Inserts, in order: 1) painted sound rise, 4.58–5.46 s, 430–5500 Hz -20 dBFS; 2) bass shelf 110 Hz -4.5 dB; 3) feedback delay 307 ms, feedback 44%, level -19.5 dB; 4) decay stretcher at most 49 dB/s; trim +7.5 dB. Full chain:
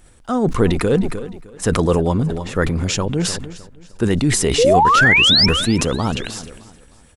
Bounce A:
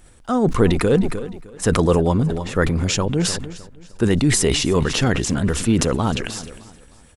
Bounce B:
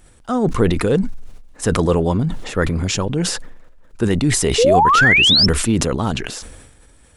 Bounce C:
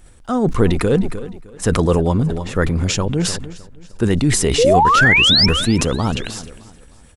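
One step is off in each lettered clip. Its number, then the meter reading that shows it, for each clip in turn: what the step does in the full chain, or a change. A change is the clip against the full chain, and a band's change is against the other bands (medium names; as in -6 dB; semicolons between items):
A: 1, 2 kHz band -8.5 dB; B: 3, momentary loudness spread change -2 LU; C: 2, 125 Hz band +1.5 dB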